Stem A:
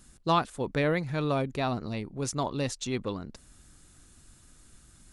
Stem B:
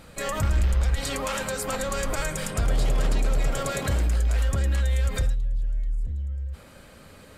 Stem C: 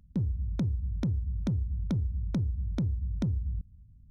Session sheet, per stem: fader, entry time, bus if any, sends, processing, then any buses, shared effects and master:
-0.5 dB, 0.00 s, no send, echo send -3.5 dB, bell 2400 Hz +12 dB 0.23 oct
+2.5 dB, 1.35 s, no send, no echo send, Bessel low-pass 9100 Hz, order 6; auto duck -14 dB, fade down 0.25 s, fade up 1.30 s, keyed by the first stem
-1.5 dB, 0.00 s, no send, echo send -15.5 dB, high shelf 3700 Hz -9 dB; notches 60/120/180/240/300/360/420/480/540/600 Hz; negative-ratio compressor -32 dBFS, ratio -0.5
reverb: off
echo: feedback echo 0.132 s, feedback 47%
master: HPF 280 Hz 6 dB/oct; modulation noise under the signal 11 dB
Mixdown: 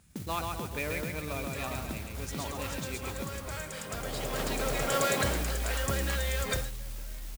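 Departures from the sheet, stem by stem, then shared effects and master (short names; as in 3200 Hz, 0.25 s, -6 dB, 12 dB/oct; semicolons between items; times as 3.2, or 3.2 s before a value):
stem A -0.5 dB -> -9.5 dB; stem C -1.5 dB -> +4.5 dB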